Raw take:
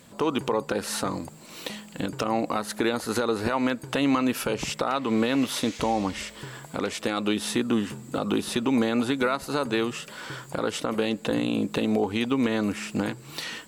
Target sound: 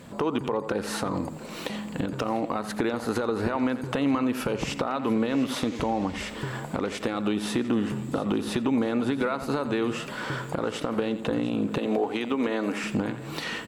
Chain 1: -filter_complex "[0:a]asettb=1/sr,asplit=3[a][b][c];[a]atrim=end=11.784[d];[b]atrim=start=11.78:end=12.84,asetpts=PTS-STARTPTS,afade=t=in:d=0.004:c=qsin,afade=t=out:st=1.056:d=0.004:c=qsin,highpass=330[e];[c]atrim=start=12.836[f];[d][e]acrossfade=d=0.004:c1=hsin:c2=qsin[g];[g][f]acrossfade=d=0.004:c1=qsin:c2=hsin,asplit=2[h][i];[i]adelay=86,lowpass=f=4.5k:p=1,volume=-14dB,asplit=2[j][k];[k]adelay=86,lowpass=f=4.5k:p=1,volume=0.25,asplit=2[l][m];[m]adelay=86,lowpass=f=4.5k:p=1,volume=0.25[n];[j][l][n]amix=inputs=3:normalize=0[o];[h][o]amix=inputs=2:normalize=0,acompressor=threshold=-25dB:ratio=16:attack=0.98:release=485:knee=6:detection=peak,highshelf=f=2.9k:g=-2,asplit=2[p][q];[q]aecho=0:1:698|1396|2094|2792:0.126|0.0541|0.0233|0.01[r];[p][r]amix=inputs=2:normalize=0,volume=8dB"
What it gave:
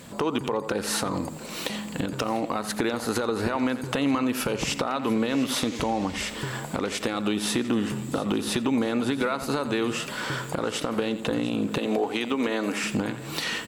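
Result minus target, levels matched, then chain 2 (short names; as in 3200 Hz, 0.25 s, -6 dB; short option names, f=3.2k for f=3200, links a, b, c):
8000 Hz band +7.0 dB
-filter_complex "[0:a]asettb=1/sr,asplit=3[a][b][c];[a]atrim=end=11.784[d];[b]atrim=start=11.78:end=12.84,asetpts=PTS-STARTPTS,afade=t=in:d=0.004:c=qsin,afade=t=out:st=1.056:d=0.004:c=qsin,highpass=330[e];[c]atrim=start=12.836[f];[d][e]acrossfade=d=0.004:c1=hsin:c2=qsin[g];[g][f]acrossfade=d=0.004:c1=qsin:c2=hsin,asplit=2[h][i];[i]adelay=86,lowpass=f=4.5k:p=1,volume=-14dB,asplit=2[j][k];[k]adelay=86,lowpass=f=4.5k:p=1,volume=0.25,asplit=2[l][m];[m]adelay=86,lowpass=f=4.5k:p=1,volume=0.25[n];[j][l][n]amix=inputs=3:normalize=0[o];[h][o]amix=inputs=2:normalize=0,acompressor=threshold=-25dB:ratio=16:attack=0.98:release=485:knee=6:detection=peak,highshelf=f=2.9k:g=-11,asplit=2[p][q];[q]aecho=0:1:698|1396|2094|2792:0.126|0.0541|0.0233|0.01[r];[p][r]amix=inputs=2:normalize=0,volume=8dB"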